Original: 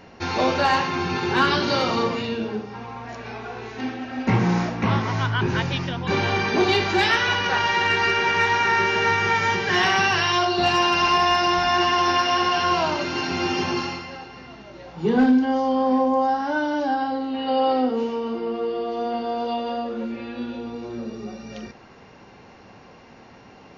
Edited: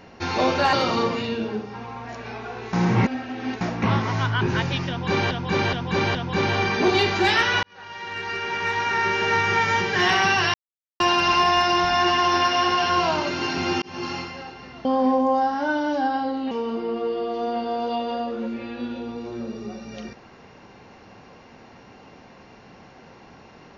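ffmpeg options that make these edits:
ffmpeg -i in.wav -filter_complex "[0:a]asplit=13[link_01][link_02][link_03][link_04][link_05][link_06][link_07][link_08][link_09][link_10][link_11][link_12][link_13];[link_01]atrim=end=0.732[link_14];[link_02]atrim=start=1.728:end=3.732[link_15];[link_03]atrim=start=3.728:end=4.612,asetpts=PTS-STARTPTS,areverse[link_16];[link_04]atrim=start=4.608:end=6.312[link_17];[link_05]atrim=start=5.888:end=6.312[link_18];[link_06]atrim=start=5.888:end=6.312[link_19];[link_07]atrim=start=5.888:end=7.37,asetpts=PTS-STARTPTS,afade=type=out:start_time=1.478:duration=0.004:curve=hsin[link_20];[link_08]atrim=start=7.37:end=10.28,asetpts=PTS-STARTPTS,afade=type=in:duration=1.87,afade=type=out:start_time=2.906:duration=0.004:curve=hsin[link_21];[link_09]atrim=start=10.28:end=10.74,asetpts=PTS-STARTPTS,volume=0[link_22];[link_10]atrim=start=10.74:end=13.56,asetpts=PTS-STARTPTS,afade=type=in:duration=0.004:curve=hsin,afade=type=out:start_time=2.816:duration=0.004:curve=hsin[link_23];[link_11]atrim=start=13.56:end=14.592,asetpts=PTS-STARTPTS,afade=type=in:duration=0.37[link_24];[link_12]atrim=start=15.718:end=17.382[link_25];[link_13]atrim=start=18.088[link_26];[link_14][link_15]acrossfade=duration=0.004:curve1=hsin:curve2=hsin[link_27];[link_27][link_16]acrossfade=duration=0.004:curve1=hsin:curve2=hsin[link_28];[link_28][link_17]acrossfade=duration=0.004:curve1=hsin:curve2=hsin[link_29];[link_29][link_18]acrossfade=duration=0.004:curve1=hsin:curve2=hsin[link_30];[link_30][link_19]acrossfade=duration=0.004:curve1=hsin:curve2=hsin[link_31];[link_20][link_21][link_22][link_23][link_24]concat=n=5:v=0:a=1[link_32];[link_31][link_32]acrossfade=duration=0.004:curve1=hsin:curve2=hsin[link_33];[link_33][link_25]acrossfade=duration=0.004:curve1=hsin:curve2=hsin[link_34];[link_34][link_26]acrossfade=duration=0.004:curve1=hsin:curve2=hsin" out.wav

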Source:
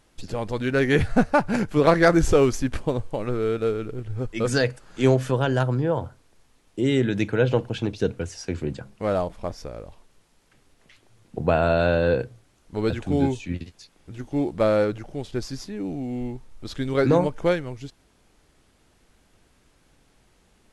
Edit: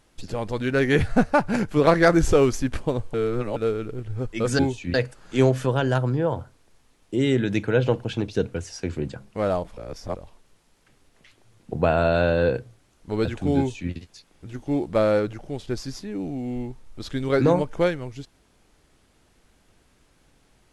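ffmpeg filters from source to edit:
ffmpeg -i in.wav -filter_complex "[0:a]asplit=7[link_01][link_02][link_03][link_04][link_05][link_06][link_07];[link_01]atrim=end=3.142[link_08];[link_02]atrim=start=3.138:end=3.562,asetpts=PTS-STARTPTS,areverse[link_09];[link_03]atrim=start=3.558:end=4.592[link_10];[link_04]atrim=start=13.208:end=13.562[link_11];[link_05]atrim=start=4.588:end=9.422[link_12];[link_06]atrim=start=9.418:end=9.812,asetpts=PTS-STARTPTS,areverse[link_13];[link_07]atrim=start=9.808[link_14];[link_08][link_09]acrossfade=duration=0.004:curve1=hsin:curve2=hsin[link_15];[link_15][link_10]acrossfade=duration=0.004:curve1=hsin:curve2=hsin[link_16];[link_16][link_11]acrossfade=duration=0.004:curve1=hsin:curve2=hsin[link_17];[link_17][link_12]acrossfade=duration=0.004:curve1=hsin:curve2=hsin[link_18];[link_18][link_13]acrossfade=duration=0.004:curve1=hsin:curve2=hsin[link_19];[link_19][link_14]acrossfade=duration=0.004:curve1=hsin:curve2=hsin" out.wav

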